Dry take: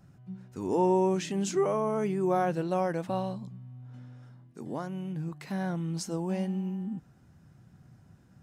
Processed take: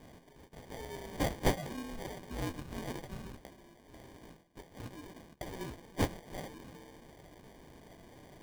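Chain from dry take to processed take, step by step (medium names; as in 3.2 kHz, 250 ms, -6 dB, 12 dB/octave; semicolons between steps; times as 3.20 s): Bessel high-pass 2.4 kHz, order 6; flange 0.27 Hz, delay 6.5 ms, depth 8.5 ms, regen +56%; sample-and-hold 33×; reverse; upward compressor, threshold -56 dBFS; reverse; trim +14.5 dB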